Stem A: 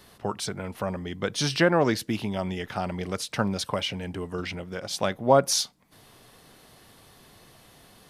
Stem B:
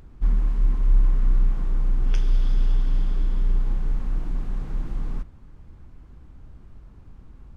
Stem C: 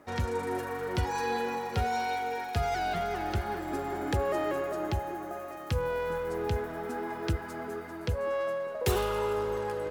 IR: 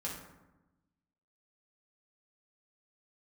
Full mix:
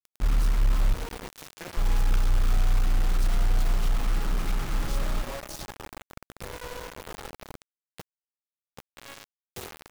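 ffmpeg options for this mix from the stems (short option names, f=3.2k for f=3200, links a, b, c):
-filter_complex "[0:a]bandreject=f=2.9k:w=19,acompressor=threshold=-32dB:ratio=3,volume=-12dB,asplit=2[a][b];[b]volume=-19dB[c];[1:a]equalizer=f=1.3k:t=o:w=0.44:g=13.5,aeval=exprs='clip(val(0),-1,0.126)':c=same,volume=-1dB,asplit=3[d][e][f];[d]atrim=end=0.94,asetpts=PTS-STARTPTS,afade=t=out:st=0.936:d=0.004:c=hsin[g];[e]atrim=start=0.94:end=1.77,asetpts=PTS-STARTPTS,volume=0[h];[f]atrim=start=1.77,asetpts=PTS-STARTPTS,afade=t=in:d=0.004:c=hsin[i];[g][h][i]concat=n=3:v=0:a=1,asplit=3[j][k][l];[k]volume=-13.5dB[m];[l]volume=-19.5dB[n];[2:a]highpass=99,adelay=700,volume=-14dB,asplit=3[o][p][q];[p]volume=-13dB[r];[q]volume=-10.5dB[s];[3:a]atrim=start_sample=2205[t];[m][r]amix=inputs=2:normalize=0[u];[u][t]afir=irnorm=-1:irlink=0[v];[c][n][s]amix=inputs=3:normalize=0,aecho=0:1:65|130|195|260:1|0.23|0.0529|0.0122[w];[a][j][o][v][w]amix=inputs=5:normalize=0,asoftclip=type=tanh:threshold=-14.5dB,acrusher=bits=5:mix=0:aa=0.000001"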